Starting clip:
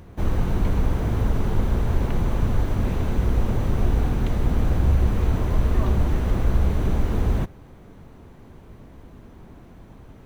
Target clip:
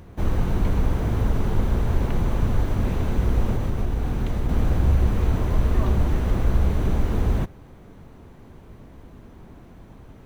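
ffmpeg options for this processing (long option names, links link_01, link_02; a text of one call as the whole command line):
ffmpeg -i in.wav -filter_complex "[0:a]asettb=1/sr,asplit=3[link_01][link_02][link_03];[link_01]atrim=end=3.534[link_04];[link_02]atrim=start=3.53:end=4.49,asetpts=PTS-STARTPTS,afade=type=in:duration=0.004:curve=qsin,afade=type=out:start_time=0.956:duration=0.004:curve=qsin,acompressor=threshold=-19dB:ratio=6[link_05];[link_03]atrim=start=4.486[link_06];[link_04][link_05]acrossfade=duration=0.004:curve1=hsin:curve2=qsin[link_07];[link_07][link_06]acrossfade=duration=0.004:curve1=qsin:curve2=hsin" out.wav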